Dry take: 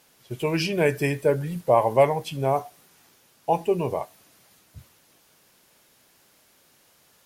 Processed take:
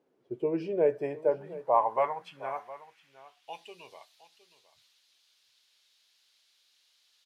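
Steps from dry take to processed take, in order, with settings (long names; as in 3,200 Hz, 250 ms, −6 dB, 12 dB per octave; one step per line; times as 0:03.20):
band-pass filter sweep 370 Hz → 3,900 Hz, 0:00.39–0:03.73
single-tap delay 714 ms −17 dB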